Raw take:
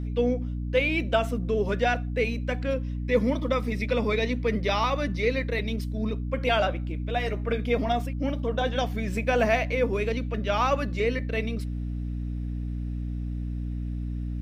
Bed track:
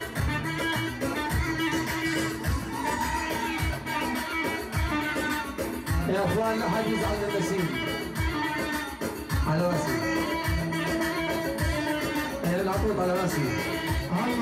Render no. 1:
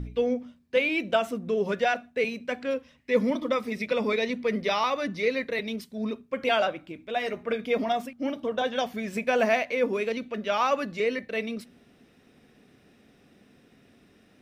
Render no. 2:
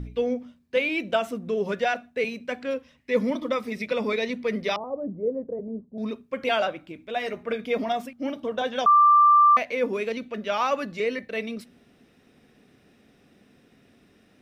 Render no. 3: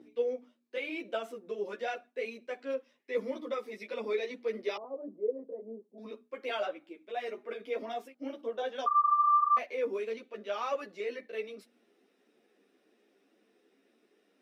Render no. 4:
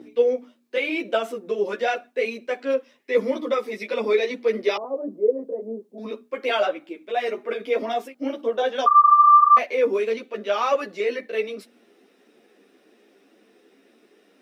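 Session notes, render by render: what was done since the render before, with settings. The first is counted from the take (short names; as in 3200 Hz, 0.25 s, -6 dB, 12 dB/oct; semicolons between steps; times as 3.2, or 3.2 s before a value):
de-hum 60 Hz, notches 5
4.76–5.98 inverse Chebyshev low-pass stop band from 3000 Hz, stop band 70 dB; 8.86–9.57 bleep 1180 Hz -12.5 dBFS
ladder high-pass 290 Hz, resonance 40%; ensemble effect
gain +12 dB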